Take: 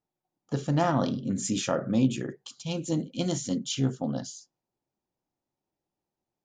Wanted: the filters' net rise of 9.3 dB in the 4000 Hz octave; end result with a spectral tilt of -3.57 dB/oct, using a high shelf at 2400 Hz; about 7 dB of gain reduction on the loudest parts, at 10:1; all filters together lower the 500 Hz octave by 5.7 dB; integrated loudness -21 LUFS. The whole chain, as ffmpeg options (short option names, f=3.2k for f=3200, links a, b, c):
-af "equalizer=f=500:t=o:g=-8,highshelf=f=2.4k:g=4,equalizer=f=4k:t=o:g=8.5,acompressor=threshold=-27dB:ratio=10,volume=11.5dB"